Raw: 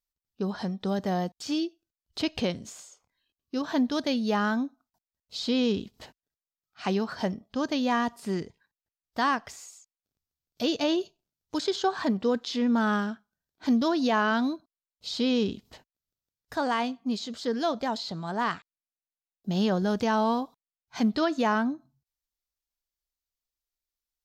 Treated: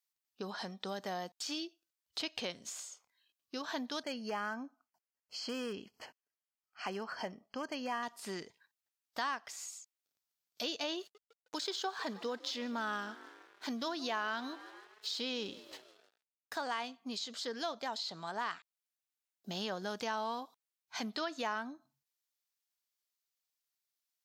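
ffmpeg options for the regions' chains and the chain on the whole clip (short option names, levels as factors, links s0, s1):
-filter_complex "[0:a]asettb=1/sr,asplit=3[s0][s1][s2];[s0]atrim=end=4.034[s3];[s1]atrim=start=4.03:end=8.03,asetpts=PTS-STARTPTS,afade=t=in:d=0.004:c=qsin,afade=t=out:st=3.996:d=0.004:c=qsin,highshelf=f=3700:g=-9,asoftclip=type=hard:threshold=0.106,asuperstop=centerf=3700:order=12:qfactor=4.2[s4];[s2]atrim=start=8.026[s5];[s3][s4]acrossfade=d=0.004:c1=hsin:c2=qsin[s6];[s6][s5]acrossfade=d=0.004:c1=qsin:c2=hsin,asettb=1/sr,asplit=3[s7][s8][s9];[s7]atrim=end=10.994[s10];[s8]atrim=start=10.99:end=16.62,asetpts=PTS-STARTPTS,afade=t=in:d=0.004:c=qsin,afade=t=out:st=5.626:d=0.004:c=qsin,asplit=6[s11][s12][s13][s14][s15][s16];[s12]adelay=156,afreqshift=43,volume=0.0944[s17];[s13]adelay=312,afreqshift=86,volume=0.0556[s18];[s14]adelay=468,afreqshift=129,volume=0.0327[s19];[s15]adelay=624,afreqshift=172,volume=0.0195[s20];[s16]adelay=780,afreqshift=215,volume=0.0115[s21];[s11][s17][s18][s19][s20][s21]amix=inputs=6:normalize=0,atrim=end_sample=248283,aeval=exprs='sgn(val(0))*max(abs(val(0))-0.00141,0)':c=same[s22];[s9]atrim=start=16.616[s23];[s10][s22]acrossfade=d=0.004:c1=hsin:c2=qsin[s24];[s24][s23]acrossfade=d=0.004:c1=qsin:c2=hsin,highpass=f=1100:p=1,acompressor=threshold=0.00708:ratio=2,volume=1.33"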